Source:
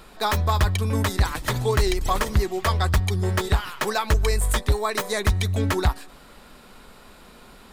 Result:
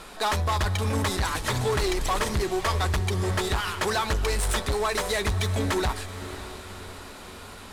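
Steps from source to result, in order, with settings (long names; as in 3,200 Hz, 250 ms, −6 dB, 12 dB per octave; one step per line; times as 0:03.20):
variable-slope delta modulation 64 kbit/s
low-shelf EQ 290 Hz −6.5 dB
in parallel at −0.5 dB: brickwall limiter −21.5 dBFS, peak gain reduction 9 dB
on the sum: soft clipping −20.5 dBFS, distortion −12 dB
feedback delay with all-pass diffusion 570 ms, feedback 51%, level −13 dB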